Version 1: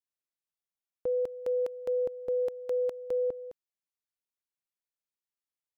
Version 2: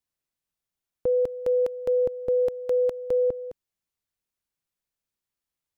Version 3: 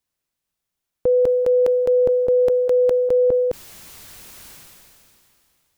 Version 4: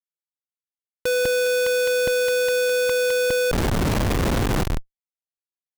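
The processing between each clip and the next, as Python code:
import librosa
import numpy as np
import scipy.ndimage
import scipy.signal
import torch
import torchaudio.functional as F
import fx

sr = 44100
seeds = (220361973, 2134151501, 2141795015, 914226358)

y1 = fx.low_shelf(x, sr, hz=200.0, db=10.5)
y1 = y1 * 10.0 ** (5.0 / 20.0)
y2 = fx.sustainer(y1, sr, db_per_s=22.0)
y2 = y2 * 10.0 ** (6.0 / 20.0)
y3 = fx.schmitt(y2, sr, flips_db=-37.5)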